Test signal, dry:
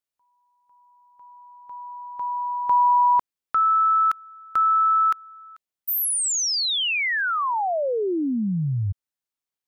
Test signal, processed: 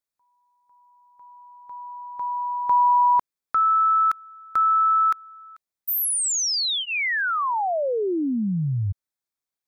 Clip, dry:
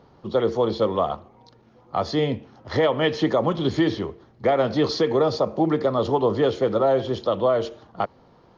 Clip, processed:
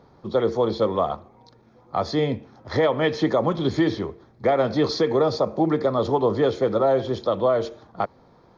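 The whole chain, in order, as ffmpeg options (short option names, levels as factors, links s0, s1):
-af "bandreject=f=2900:w=5.4"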